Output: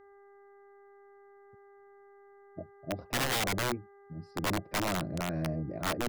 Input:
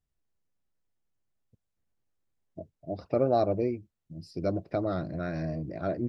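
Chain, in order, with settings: low-pass 1.1 kHz 6 dB/octave; mains buzz 400 Hz, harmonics 5, -57 dBFS -7 dB/octave; integer overflow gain 24.5 dB

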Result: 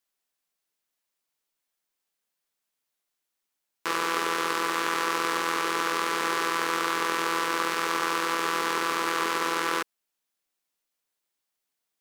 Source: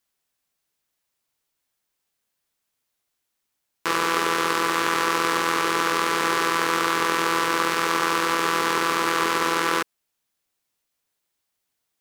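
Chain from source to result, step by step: peaking EQ 75 Hz -13 dB 1.6 oct; trim -4.5 dB

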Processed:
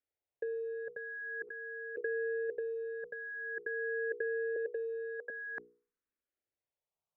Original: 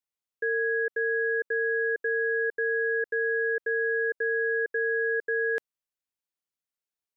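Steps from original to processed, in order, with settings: low-pass 1.4 kHz 12 dB/octave; hum notches 60/120/180/240/300/360/420/480 Hz; 1.47–2.01 s: peaking EQ 1.1 kHz +14 dB 2.3 oct; 4.56–5.30 s: high-pass 370 Hz 24 dB/octave; compressor with a negative ratio -35 dBFS, ratio -1; barber-pole phaser +0.47 Hz

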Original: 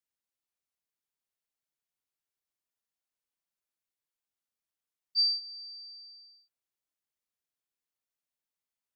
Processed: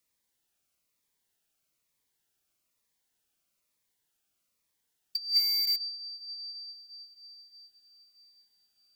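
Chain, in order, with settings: echo that smears into a reverb 581 ms, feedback 43%, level -15 dB; in parallel at -7 dB: bit crusher 7-bit; on the sum: compressor with a negative ratio -32 dBFS, ratio -0.5; Shepard-style phaser falling 1.1 Hz; trim +6.5 dB

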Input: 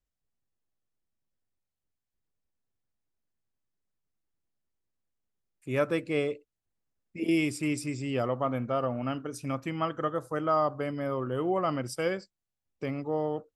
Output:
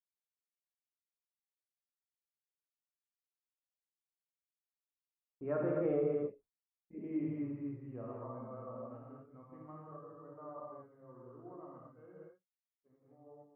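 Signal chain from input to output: Doppler pass-by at 6.00 s, 16 m/s, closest 1.7 m; low-pass 1.3 kHz 24 dB/octave; gated-style reverb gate 280 ms flat, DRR -4.5 dB; compression 6:1, threshold -36 dBFS, peak gain reduction 14.5 dB; expander -58 dBFS; trim +5.5 dB

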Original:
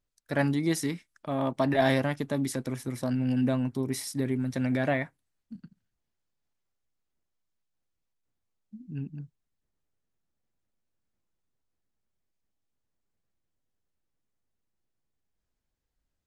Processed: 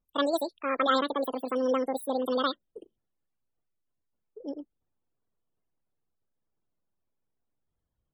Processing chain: vibrato 0.36 Hz 15 cents; loudest bins only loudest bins 32; speed mistake 7.5 ips tape played at 15 ips

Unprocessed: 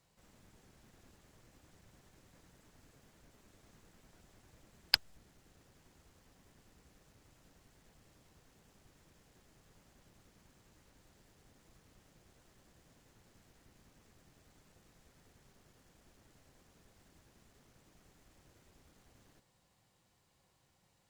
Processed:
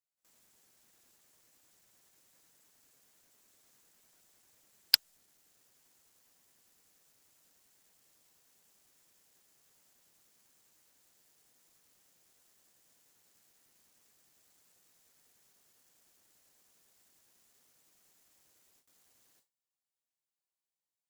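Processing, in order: RIAA curve recording; gate with hold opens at -50 dBFS; waveshaping leveller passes 1; trim -6 dB

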